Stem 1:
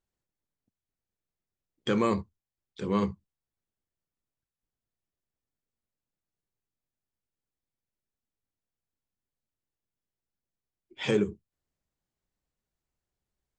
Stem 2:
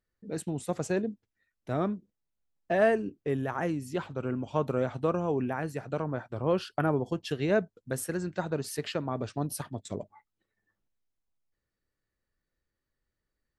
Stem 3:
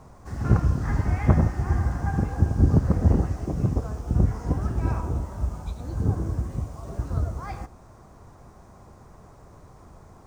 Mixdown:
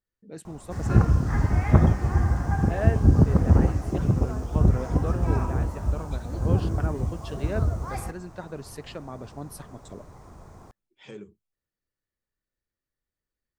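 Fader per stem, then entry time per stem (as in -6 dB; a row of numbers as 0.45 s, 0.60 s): -16.5 dB, -6.0 dB, +1.5 dB; 0.00 s, 0.00 s, 0.45 s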